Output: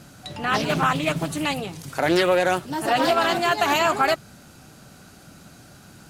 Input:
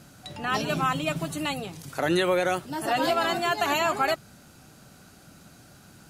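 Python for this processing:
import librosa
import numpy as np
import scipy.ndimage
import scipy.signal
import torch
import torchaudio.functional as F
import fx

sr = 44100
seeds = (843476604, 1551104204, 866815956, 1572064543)

y = fx.doppler_dist(x, sr, depth_ms=0.3)
y = F.gain(torch.from_numpy(y), 4.5).numpy()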